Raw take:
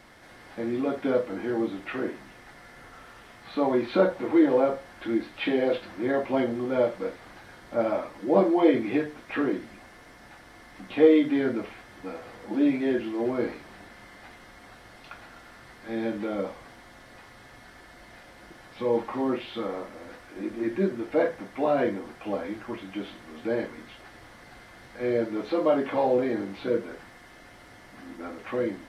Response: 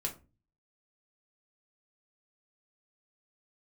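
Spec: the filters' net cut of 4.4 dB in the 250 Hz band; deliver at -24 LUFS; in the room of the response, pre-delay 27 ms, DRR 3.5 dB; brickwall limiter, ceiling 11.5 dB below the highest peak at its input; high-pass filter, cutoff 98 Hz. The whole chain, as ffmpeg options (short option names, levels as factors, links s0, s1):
-filter_complex "[0:a]highpass=98,equalizer=f=250:t=o:g=-6,alimiter=limit=0.1:level=0:latency=1,asplit=2[s0][s1];[1:a]atrim=start_sample=2205,adelay=27[s2];[s1][s2]afir=irnorm=-1:irlink=0,volume=0.562[s3];[s0][s3]amix=inputs=2:normalize=0,volume=2.11"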